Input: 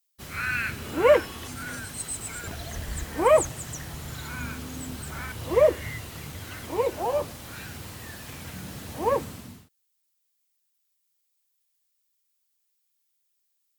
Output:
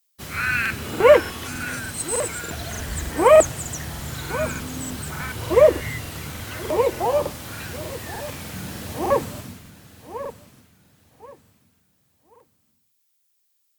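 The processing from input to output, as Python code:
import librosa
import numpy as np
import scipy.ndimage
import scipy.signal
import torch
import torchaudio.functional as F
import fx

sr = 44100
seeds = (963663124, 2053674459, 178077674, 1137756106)

y = scipy.signal.sosfilt(scipy.signal.butter(2, 54.0, 'highpass', fs=sr, output='sos'), x)
y = fx.echo_feedback(y, sr, ms=1083, feedback_pct=28, wet_db=-14.0)
y = fx.buffer_crackle(y, sr, first_s=0.61, period_s=0.3, block=2048, kind='repeat')
y = F.gain(torch.from_numpy(y), 5.5).numpy()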